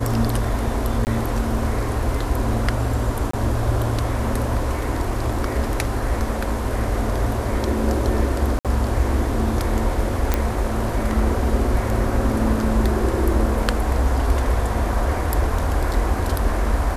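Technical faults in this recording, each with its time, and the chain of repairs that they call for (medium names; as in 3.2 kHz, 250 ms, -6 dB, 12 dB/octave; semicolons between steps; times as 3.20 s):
1.05–1.07 s: dropout 19 ms
3.31–3.33 s: dropout 24 ms
8.59–8.65 s: dropout 57 ms
10.34 s: pop -5 dBFS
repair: de-click; interpolate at 1.05 s, 19 ms; interpolate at 3.31 s, 24 ms; interpolate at 8.59 s, 57 ms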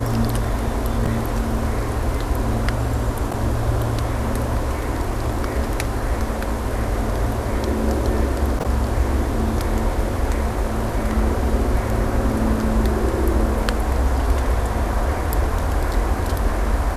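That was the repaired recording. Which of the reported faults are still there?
nothing left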